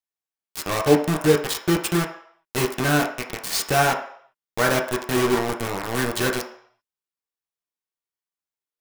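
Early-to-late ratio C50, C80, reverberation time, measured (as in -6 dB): 8.5 dB, 12.0 dB, 0.60 s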